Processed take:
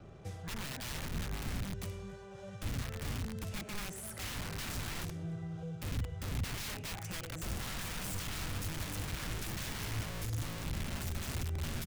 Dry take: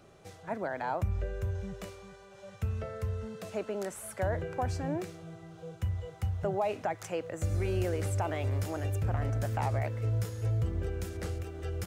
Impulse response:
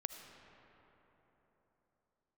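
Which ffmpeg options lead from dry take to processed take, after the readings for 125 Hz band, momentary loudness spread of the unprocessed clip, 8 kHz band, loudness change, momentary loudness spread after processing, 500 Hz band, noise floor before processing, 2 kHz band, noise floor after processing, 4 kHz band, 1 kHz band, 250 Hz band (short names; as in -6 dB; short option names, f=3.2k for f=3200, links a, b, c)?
-7.0 dB, 13 LU, +4.5 dB, -6.0 dB, 4 LU, -13.5 dB, -53 dBFS, 0.0 dB, -48 dBFS, +8.5 dB, -9.5 dB, -3.5 dB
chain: -filter_complex "[0:a]bandreject=f=4.2k:w=17,aecho=1:1:280:0.0891[a];[1:a]atrim=start_sample=2205,atrim=end_sample=6615,asetrate=52920,aresample=44100[b];[a][b]afir=irnorm=-1:irlink=0,asplit=2[c][d];[d]acompressor=threshold=-46dB:ratio=12,volume=-2dB[e];[c][e]amix=inputs=2:normalize=0,aeval=exprs='(mod(56.2*val(0)+1,2)-1)/56.2':c=same,lowshelf=f=180:g=5.5,acrossover=split=200|1400[f][g][h];[g]alimiter=level_in=18dB:limit=-24dB:level=0:latency=1:release=472,volume=-18dB[i];[f][i][h]amix=inputs=3:normalize=0,anlmdn=0.0000158,bass=f=250:g=6,treble=f=4k:g=0,volume=-1dB"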